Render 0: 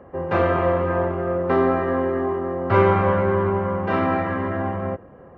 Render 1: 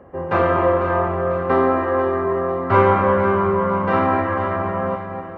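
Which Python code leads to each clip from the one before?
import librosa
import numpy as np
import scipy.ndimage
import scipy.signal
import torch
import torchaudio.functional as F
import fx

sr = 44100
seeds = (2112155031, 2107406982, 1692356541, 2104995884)

y = fx.echo_alternate(x, sr, ms=248, hz=820.0, feedback_pct=74, wet_db=-7)
y = fx.dynamic_eq(y, sr, hz=1100.0, q=1.3, threshold_db=-34.0, ratio=4.0, max_db=5)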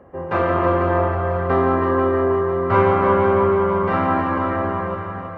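y = fx.echo_heads(x, sr, ms=160, heads='first and second', feedback_pct=48, wet_db=-9)
y = y * librosa.db_to_amplitude(-2.0)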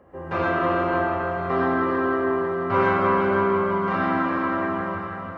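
y = fx.high_shelf(x, sr, hz=2900.0, db=8.0)
y = fx.rev_gated(y, sr, seeds[0], gate_ms=140, shape='rising', drr_db=-1.5)
y = y * librosa.db_to_amplitude(-7.0)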